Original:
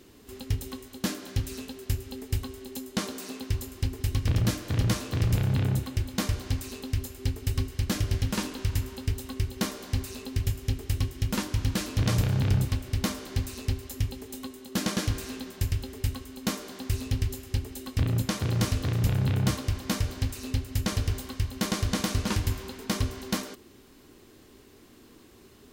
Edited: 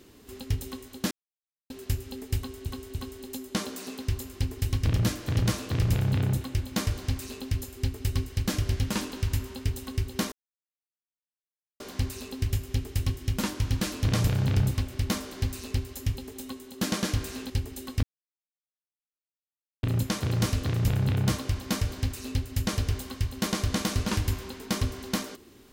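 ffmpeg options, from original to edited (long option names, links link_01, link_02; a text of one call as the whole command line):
ffmpeg -i in.wav -filter_complex "[0:a]asplit=8[link_01][link_02][link_03][link_04][link_05][link_06][link_07][link_08];[link_01]atrim=end=1.11,asetpts=PTS-STARTPTS,afade=type=out:start_time=1.106:duration=0.004:curve=hsin[link_09];[link_02]atrim=start=1.11:end=1.7,asetpts=PTS-STARTPTS,volume=0[link_10];[link_03]atrim=start=1.7:end=2.662,asetpts=PTS-STARTPTS,afade=type=in:duration=0.004:curve=hsin[link_11];[link_04]atrim=start=2.368:end=2.662[link_12];[link_05]atrim=start=2.368:end=9.74,asetpts=PTS-STARTPTS,afade=type=out:start_time=7.368:duration=0.004:curve=hsin,apad=pad_dur=1.48[link_13];[link_06]atrim=start=9.74:end=15.442,asetpts=PTS-STARTPTS,afade=type=in:duration=0.004:curve=hsin[link_14];[link_07]atrim=start=17.488:end=18.02,asetpts=PTS-STARTPTS,afade=type=out:start_time=0.528:duration=0.004:curve=hsin,apad=pad_dur=1.8[link_15];[link_08]atrim=start=18.02,asetpts=PTS-STARTPTS,afade=type=in:duration=0.004:curve=hsin[link_16];[link_09][link_10][link_11]concat=n=3:v=0:a=1[link_17];[link_17][link_12]acrossfade=duration=0.004:curve1=hsin:curve2=hsin[link_18];[link_13][link_14]concat=n=2:v=0:a=1[link_19];[link_18][link_19]acrossfade=duration=0.004:curve1=hsin:curve2=hsin[link_20];[link_15][link_16]concat=n=2:v=0:a=1[link_21];[link_20][link_21]acrossfade=duration=0.004:curve1=hsin:curve2=hsin" out.wav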